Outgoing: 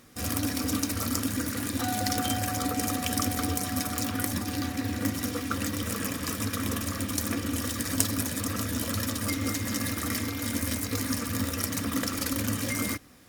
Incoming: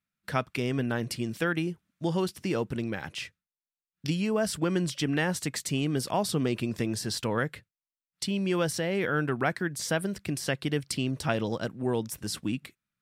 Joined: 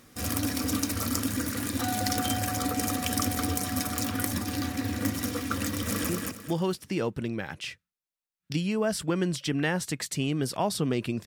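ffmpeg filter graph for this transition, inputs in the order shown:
ffmpeg -i cue0.wav -i cue1.wav -filter_complex "[0:a]apad=whole_dur=11.26,atrim=end=11.26,atrim=end=6.092[link_01];[1:a]atrim=start=1.628:end=6.8[link_02];[link_01][link_02]acrossfade=duration=0.004:curve1=hsin:curve2=hsin,asplit=2[link_03][link_04];[link_04]afade=type=in:start_time=5.66:duration=0.01,afade=type=out:start_time=6.09:duration=0.01,aecho=0:1:220|440|660|880:0.749894|0.224968|0.0674905|0.0202471[link_05];[link_03][link_05]amix=inputs=2:normalize=0" out.wav

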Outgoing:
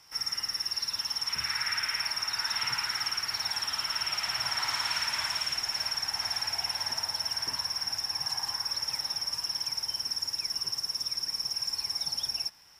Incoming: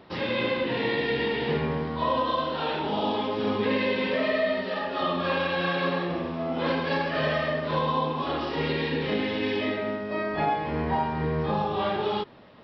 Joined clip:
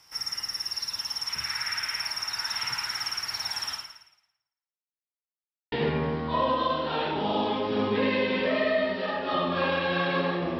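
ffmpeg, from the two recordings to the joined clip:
ffmpeg -i cue0.wav -i cue1.wav -filter_complex "[0:a]apad=whole_dur=10.59,atrim=end=10.59,asplit=2[link_01][link_02];[link_01]atrim=end=5.04,asetpts=PTS-STARTPTS,afade=type=out:start_time=3.72:duration=1.32:curve=exp[link_03];[link_02]atrim=start=5.04:end=5.72,asetpts=PTS-STARTPTS,volume=0[link_04];[1:a]atrim=start=1.4:end=6.27,asetpts=PTS-STARTPTS,afade=type=in:duration=0.004:curve=hsin[link_05];[link_03][link_04][link_05]concat=n=3:v=0:a=1" out.wav

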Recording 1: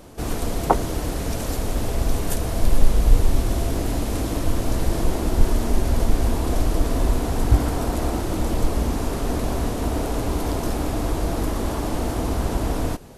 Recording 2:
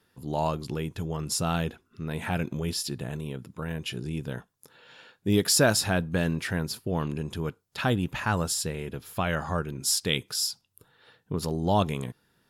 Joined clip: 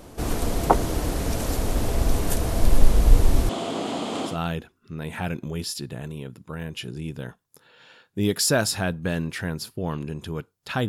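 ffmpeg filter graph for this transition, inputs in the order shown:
ffmpeg -i cue0.wav -i cue1.wav -filter_complex "[0:a]asettb=1/sr,asplit=3[link_01][link_02][link_03];[link_01]atrim=end=3.494[link_04];[link_02]atrim=start=3.49:end=4.39,asetpts=PTS-STARTPTS,afade=type=in:duration=0.004:curve=qsin,afade=type=out:start_time=0.896:duration=0.004:curve=qsin,highpass=frequency=180:width=0.5412,highpass=frequency=180:width=1.3066,equalizer=frequency=310:width_type=q:width=4:gain=-3,equalizer=frequency=760:width_type=q:width=4:gain=4,equalizer=frequency=1200:width_type=q:width=4:gain=5,equalizer=frequency=1700:width_type=q:width=4:gain=-5,equalizer=frequency=3200:width_type=q:width=4:gain=9,equalizer=frequency=5700:width_type=q:width=4:gain=-8,lowpass=frequency=7700:width=0.5412,lowpass=frequency=7700:width=1.3066[link_05];[link_03]atrim=start=4.386[link_06];[link_04][link_05]acrossfade=duration=0.004:curve1=hsin:curve2=qsin[link_07];[link_07][link_06]acrossfade=duration=0.004:curve1=qsin:curve2=hsin,apad=whole_dur=10.88,atrim=end=10.88,atrim=end=4.39,asetpts=PTS-STARTPTS[link_08];[1:a]atrim=start=1.34:end=7.97,asetpts=PTS-STARTPTS[link_09];[link_08][link_09]acrossfade=duration=0.14:curve1=tri:curve2=tri" out.wav

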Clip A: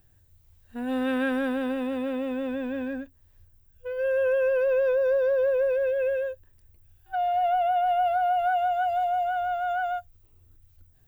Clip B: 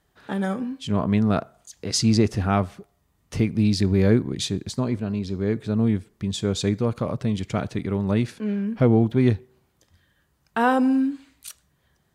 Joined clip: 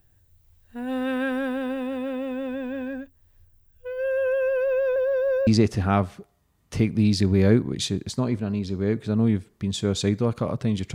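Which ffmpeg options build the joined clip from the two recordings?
ffmpeg -i cue0.wav -i cue1.wav -filter_complex "[0:a]apad=whole_dur=10.94,atrim=end=10.94,asplit=2[link_01][link_02];[link_01]atrim=end=4.962[link_03];[link_02]atrim=start=4.958:end=5.472,asetpts=PTS-STARTPTS,areverse[link_04];[1:a]atrim=start=2.068:end=7.54[link_05];[link_03][link_04]acrossfade=duration=0.004:curve1=hsin:curve2=hsin[link_06];[link_06][link_05]acrossfade=duration=0.004:curve1=hsin:curve2=hsin" out.wav

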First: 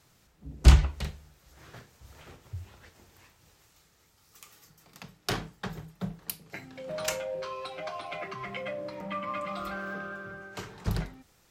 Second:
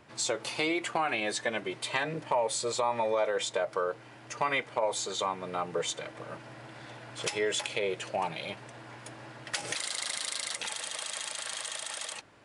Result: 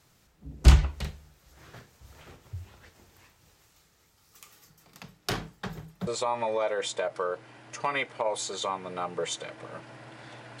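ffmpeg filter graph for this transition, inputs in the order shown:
ffmpeg -i cue0.wav -i cue1.wav -filter_complex "[0:a]apad=whole_dur=10.6,atrim=end=10.6,atrim=end=6.072[link_01];[1:a]atrim=start=2.638:end=7.17[link_02];[link_01][link_02]acrossfade=duration=0.004:curve1=hsin:curve2=hsin" out.wav

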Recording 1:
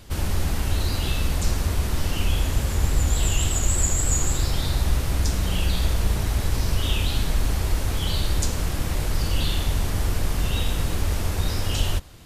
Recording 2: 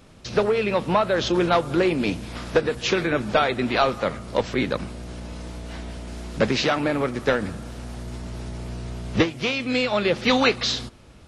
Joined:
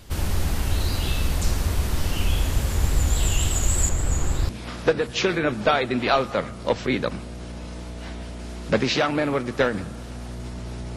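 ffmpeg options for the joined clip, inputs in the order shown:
ffmpeg -i cue0.wav -i cue1.wav -filter_complex "[0:a]asettb=1/sr,asplit=3[link_01][link_02][link_03];[link_01]atrim=end=3.894[link_04];[link_02]atrim=start=3.89:end=4.49,asetpts=PTS-STARTPTS,afade=type=in:duration=0.004:curve=qsin,afade=type=out:start_time=0.596:duration=0.004:curve=qsin,highshelf=frequency=3600:gain=-10.5[link_05];[link_03]atrim=start=4.486[link_06];[link_04][link_05]acrossfade=duration=0.004:curve1=hsin:curve2=qsin[link_07];[link_07][link_06]acrossfade=duration=0.004:curve1=qsin:curve2=hsin,apad=whole_dur=10.96,atrim=end=10.96,atrim=end=4.492[link_08];[1:a]atrim=start=2.168:end=8.64[link_09];[link_08][link_09]acrossfade=duration=0.004:curve1=hsin:curve2=hsin" out.wav

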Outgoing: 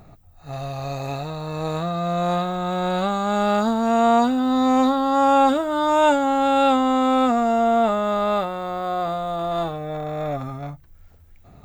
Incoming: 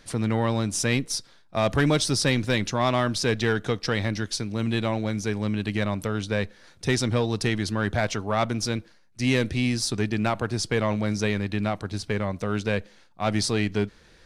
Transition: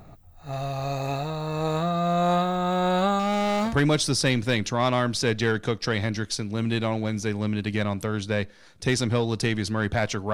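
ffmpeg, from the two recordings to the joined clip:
ffmpeg -i cue0.wav -i cue1.wav -filter_complex "[0:a]asettb=1/sr,asplit=3[link_01][link_02][link_03];[link_01]atrim=end=3.194[link_04];[link_02]atrim=start=3.19:end=3.76,asetpts=PTS-STARTPTS,afade=type=in:duration=0.004:curve=qsin,afade=type=out:start_time=0.566:duration=0.004:curve=qsin,asoftclip=type=hard:threshold=-21dB[link_05];[link_03]atrim=start=3.756[link_06];[link_04][link_05]acrossfade=duration=0.004:curve1=hsin:curve2=qsin[link_07];[link_07][link_06]acrossfade=duration=0.004:curve1=qsin:curve2=hsin,apad=whole_dur=10.33,atrim=end=10.33,atrim=end=3.76,asetpts=PTS-STARTPTS[link_08];[1:a]atrim=start=1.65:end=8.34,asetpts=PTS-STARTPTS[link_09];[link_08][link_09]acrossfade=duration=0.12:curve1=tri:curve2=tri" out.wav

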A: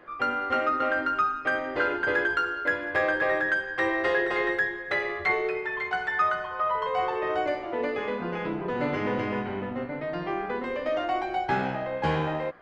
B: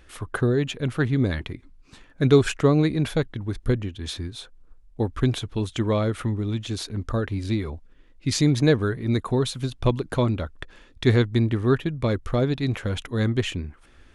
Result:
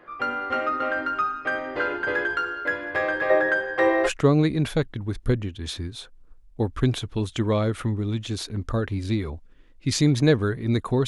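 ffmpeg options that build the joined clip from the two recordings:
ffmpeg -i cue0.wav -i cue1.wav -filter_complex "[0:a]asettb=1/sr,asplit=3[link_01][link_02][link_03];[link_01]atrim=end=3.304[link_04];[link_02]atrim=start=3.3:end=4.1,asetpts=PTS-STARTPTS,afade=type=in:duration=0.004:curve=qsin,afade=type=out:start_time=0.796:duration=0.004:curve=qsin,equalizer=frequency=550:width_type=o:width=1.6:gain=10[link_05];[link_03]atrim=start=4.096[link_06];[link_04][link_05]acrossfade=duration=0.004:curve1=hsin:curve2=qsin[link_07];[link_07][link_06]acrossfade=duration=0.004:curve1=qsin:curve2=hsin,apad=whole_dur=11.07,atrim=end=11.07,atrim=end=4.1,asetpts=PTS-STARTPTS[link_08];[1:a]atrim=start=2.44:end=9.47,asetpts=PTS-STARTPTS[link_09];[link_08][link_09]acrossfade=duration=0.06:curve1=tri:curve2=tri" out.wav

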